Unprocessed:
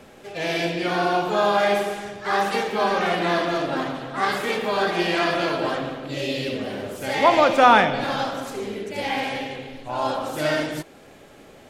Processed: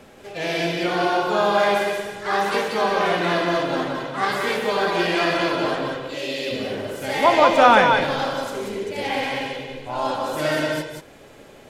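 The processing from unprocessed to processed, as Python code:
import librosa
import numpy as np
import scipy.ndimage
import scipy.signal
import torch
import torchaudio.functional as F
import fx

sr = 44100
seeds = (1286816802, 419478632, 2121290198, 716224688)

y = fx.bessel_highpass(x, sr, hz=320.0, order=2, at=(5.97, 6.51))
y = fx.echo_multitap(y, sr, ms=(183, 185), db=(-6.0, -7.5))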